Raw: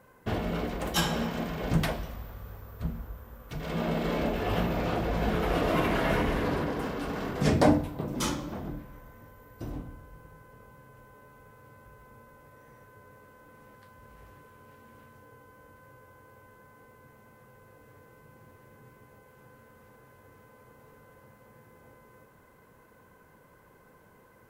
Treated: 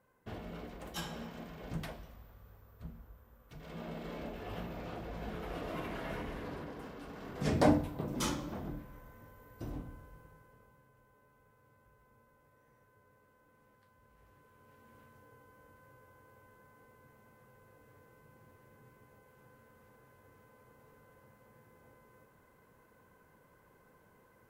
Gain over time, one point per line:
7.19 s -14 dB
7.66 s -4.5 dB
10.04 s -4.5 dB
10.93 s -13.5 dB
14.11 s -13.5 dB
14.94 s -6.5 dB

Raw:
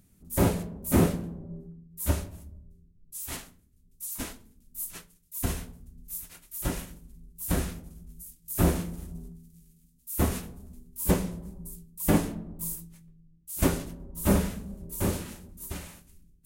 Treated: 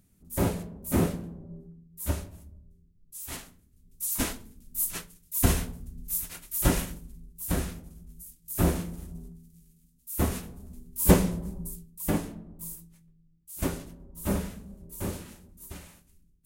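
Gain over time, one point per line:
3.17 s -3 dB
4.19 s +7 dB
6.88 s +7 dB
7.48 s -1 dB
10.43 s -1 dB
11.07 s +5.5 dB
11.6 s +5.5 dB
12.17 s -5.5 dB

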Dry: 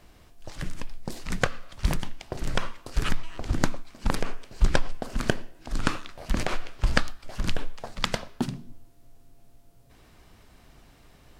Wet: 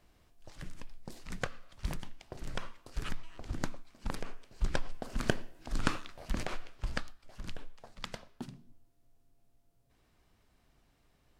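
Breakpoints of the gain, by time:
4.58 s -11.5 dB
5.31 s -5 dB
5.95 s -5 dB
7.16 s -15 dB

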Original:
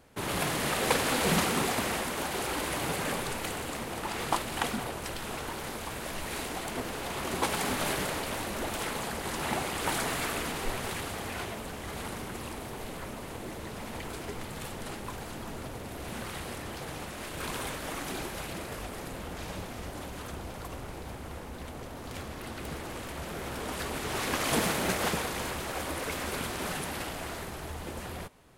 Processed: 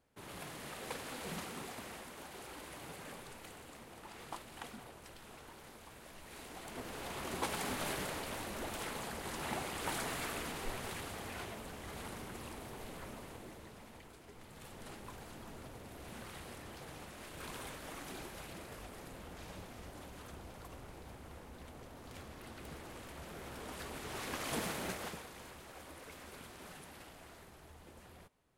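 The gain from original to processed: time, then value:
6.23 s -17 dB
7.01 s -8 dB
13.16 s -8 dB
14.21 s -18.5 dB
14.87 s -10.5 dB
24.85 s -10.5 dB
25.25 s -17.5 dB

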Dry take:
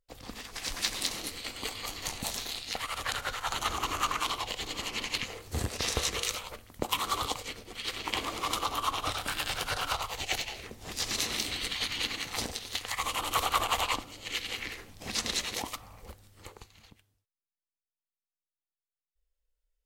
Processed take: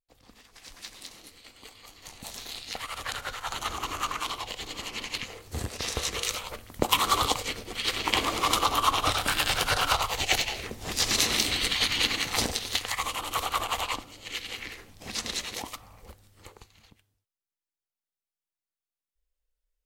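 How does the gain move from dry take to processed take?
1.96 s -12 dB
2.57 s -1 dB
5.95 s -1 dB
6.79 s +7 dB
12.71 s +7 dB
13.2 s -1 dB

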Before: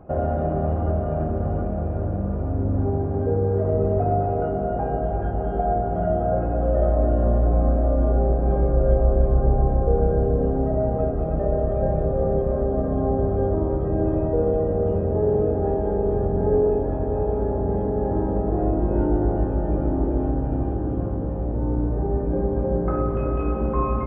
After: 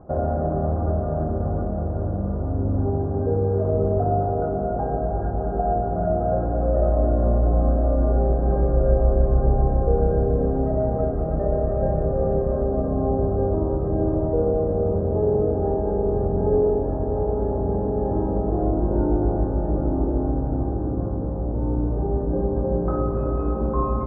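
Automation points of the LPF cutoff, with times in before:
LPF 24 dB/oct
7.54 s 1500 Hz
8.22 s 1900 Hz
12.41 s 1900 Hz
12.91 s 1400 Hz

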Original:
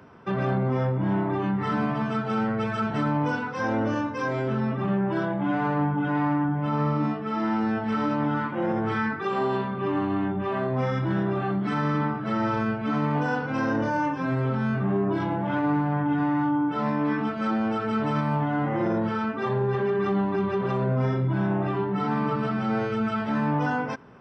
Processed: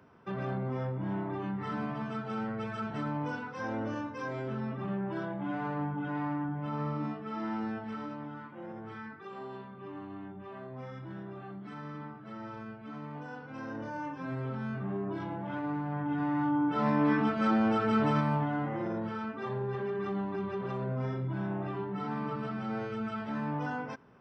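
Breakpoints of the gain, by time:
7.64 s -9.5 dB
8.32 s -17.5 dB
13.29 s -17.5 dB
14.33 s -10.5 dB
15.79 s -10.5 dB
16.99 s -1 dB
18.04 s -1 dB
18.83 s -9.5 dB

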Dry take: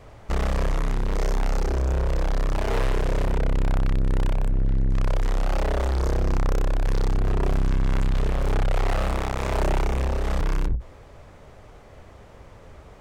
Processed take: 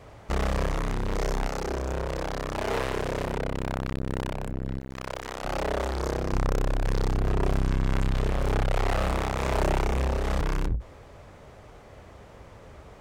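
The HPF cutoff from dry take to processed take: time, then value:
HPF 6 dB/oct
61 Hz
from 1.48 s 180 Hz
from 4.79 s 590 Hz
from 5.44 s 160 Hz
from 6.33 s 47 Hz

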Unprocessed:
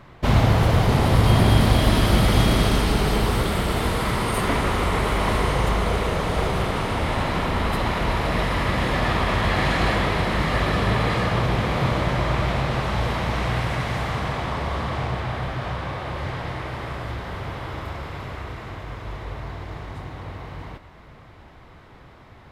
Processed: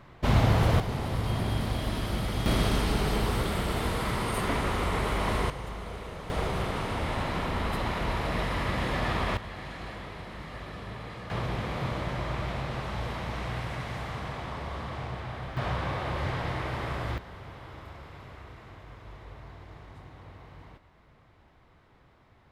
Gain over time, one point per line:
-5 dB
from 0.8 s -13 dB
from 2.46 s -6.5 dB
from 5.5 s -16.5 dB
from 6.3 s -7 dB
from 9.37 s -19 dB
from 11.3 s -10 dB
from 15.57 s -2 dB
from 17.18 s -13 dB

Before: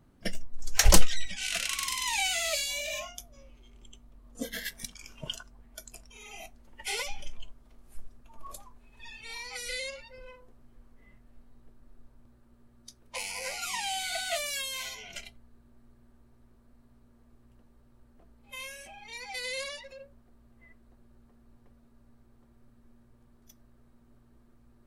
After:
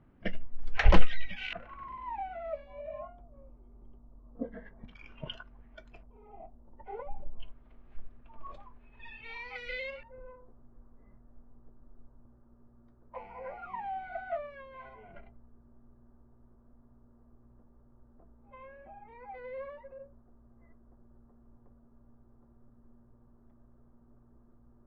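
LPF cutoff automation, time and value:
LPF 24 dB/oct
2700 Hz
from 1.53 s 1100 Hz
from 4.88 s 2700 Hz
from 6.03 s 1000 Hz
from 7.4 s 2800 Hz
from 10.03 s 1300 Hz

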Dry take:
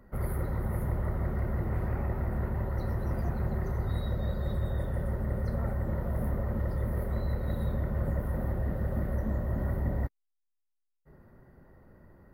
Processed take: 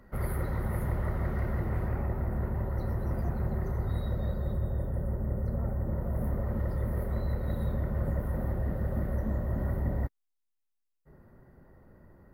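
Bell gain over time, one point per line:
bell 3700 Hz 2.8 oct
1.48 s +5 dB
2.17 s -4 dB
4.24 s -4 dB
4.72 s -13.5 dB
5.7 s -13.5 dB
6.56 s -2 dB

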